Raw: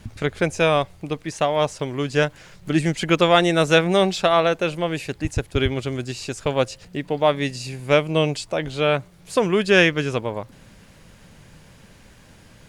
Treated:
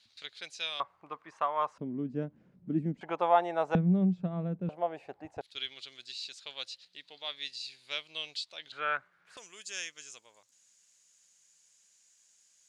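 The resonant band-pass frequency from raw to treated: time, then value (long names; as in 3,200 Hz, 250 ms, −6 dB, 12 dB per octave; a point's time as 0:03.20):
resonant band-pass, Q 4.7
4,100 Hz
from 0:00.80 1,100 Hz
from 0:01.78 230 Hz
from 0:03.01 830 Hz
from 0:03.75 180 Hz
from 0:04.69 740 Hz
from 0:05.41 4,000 Hz
from 0:08.72 1,500 Hz
from 0:09.37 6,900 Hz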